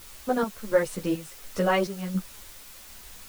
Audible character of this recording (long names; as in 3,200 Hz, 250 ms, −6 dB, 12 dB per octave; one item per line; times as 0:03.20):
chopped level 1.4 Hz, depth 60%, duty 60%
a quantiser's noise floor 8 bits, dither triangular
a shimmering, thickened sound